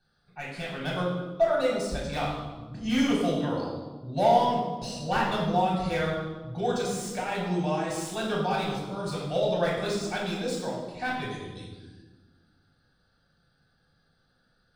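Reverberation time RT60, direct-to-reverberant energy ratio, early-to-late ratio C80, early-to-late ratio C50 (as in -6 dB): 1.3 s, -5.5 dB, 4.0 dB, 1.5 dB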